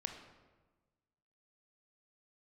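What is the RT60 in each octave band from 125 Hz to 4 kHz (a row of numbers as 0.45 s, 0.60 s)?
1.6 s, 1.5 s, 1.3 s, 1.2 s, 1.0 s, 0.80 s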